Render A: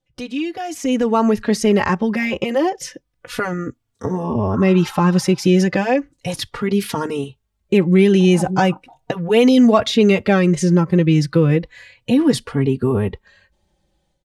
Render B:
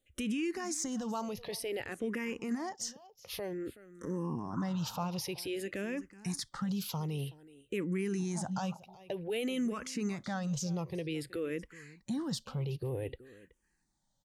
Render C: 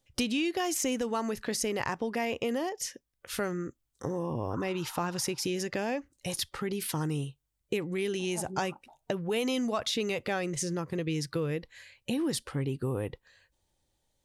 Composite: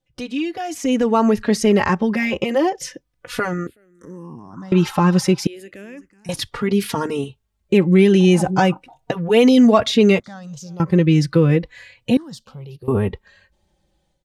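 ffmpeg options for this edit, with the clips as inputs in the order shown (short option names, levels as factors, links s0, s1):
-filter_complex "[1:a]asplit=4[s0][s1][s2][s3];[0:a]asplit=5[s4][s5][s6][s7][s8];[s4]atrim=end=3.672[s9];[s0]atrim=start=3.668:end=4.722[s10];[s5]atrim=start=4.718:end=5.472[s11];[s1]atrim=start=5.468:end=6.292[s12];[s6]atrim=start=6.288:end=10.202[s13];[s2]atrim=start=10.198:end=10.802[s14];[s7]atrim=start=10.798:end=12.172[s15];[s3]atrim=start=12.168:end=12.882[s16];[s8]atrim=start=12.878[s17];[s9][s10]acrossfade=d=0.004:c1=hsin:c2=hsin[s18];[s18][s11]acrossfade=d=0.004:c1=hsin:c2=hsin[s19];[s19][s12]acrossfade=d=0.004:c1=hsin:c2=hsin[s20];[s20][s13]acrossfade=d=0.004:c1=hsin:c2=hsin[s21];[s21][s14]acrossfade=d=0.004:c1=hsin:c2=hsin[s22];[s22][s15]acrossfade=d=0.004:c1=hsin:c2=hsin[s23];[s23][s16]acrossfade=d=0.004:c1=hsin:c2=hsin[s24];[s24][s17]acrossfade=d=0.004:c1=hsin:c2=hsin"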